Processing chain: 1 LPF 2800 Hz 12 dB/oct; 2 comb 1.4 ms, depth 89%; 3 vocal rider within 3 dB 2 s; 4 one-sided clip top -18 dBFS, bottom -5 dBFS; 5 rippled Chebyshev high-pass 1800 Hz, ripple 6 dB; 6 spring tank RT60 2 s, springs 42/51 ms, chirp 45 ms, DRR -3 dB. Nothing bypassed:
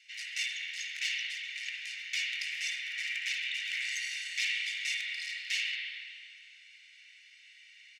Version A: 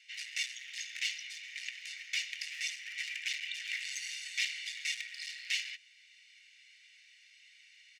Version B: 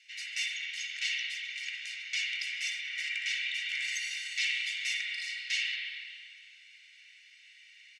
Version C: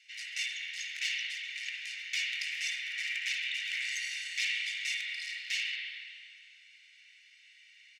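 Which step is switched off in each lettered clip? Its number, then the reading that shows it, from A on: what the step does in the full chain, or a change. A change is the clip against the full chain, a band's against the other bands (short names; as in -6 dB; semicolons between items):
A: 6, momentary loudness spread change -10 LU; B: 4, distortion -9 dB; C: 3, momentary loudness spread change -10 LU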